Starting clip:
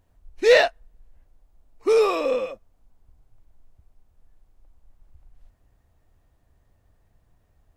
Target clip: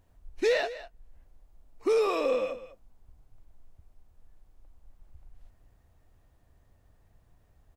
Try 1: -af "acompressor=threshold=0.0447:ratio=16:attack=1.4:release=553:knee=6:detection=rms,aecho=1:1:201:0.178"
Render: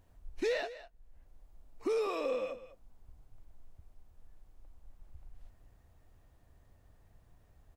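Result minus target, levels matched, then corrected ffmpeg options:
compression: peak gain reduction +7.5 dB
-af "acompressor=threshold=0.112:ratio=16:attack=1.4:release=553:knee=6:detection=rms,aecho=1:1:201:0.178"

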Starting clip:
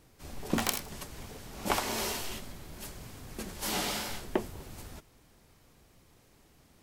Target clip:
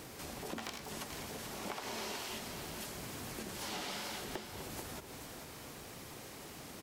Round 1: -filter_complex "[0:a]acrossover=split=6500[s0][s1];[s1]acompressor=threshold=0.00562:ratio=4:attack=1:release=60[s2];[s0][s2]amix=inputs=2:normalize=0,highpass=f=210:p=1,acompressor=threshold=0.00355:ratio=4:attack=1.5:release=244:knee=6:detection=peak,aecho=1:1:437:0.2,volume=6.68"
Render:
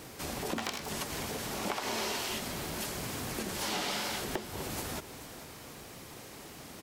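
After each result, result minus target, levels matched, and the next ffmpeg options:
compression: peak gain reduction -7.5 dB; echo-to-direct -6 dB
-filter_complex "[0:a]acrossover=split=6500[s0][s1];[s1]acompressor=threshold=0.00562:ratio=4:attack=1:release=60[s2];[s0][s2]amix=inputs=2:normalize=0,highpass=f=210:p=1,acompressor=threshold=0.00112:ratio=4:attack=1.5:release=244:knee=6:detection=peak,aecho=1:1:437:0.2,volume=6.68"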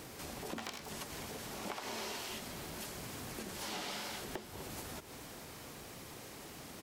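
echo-to-direct -6 dB
-filter_complex "[0:a]acrossover=split=6500[s0][s1];[s1]acompressor=threshold=0.00562:ratio=4:attack=1:release=60[s2];[s0][s2]amix=inputs=2:normalize=0,highpass=f=210:p=1,acompressor=threshold=0.00112:ratio=4:attack=1.5:release=244:knee=6:detection=peak,aecho=1:1:437:0.398,volume=6.68"

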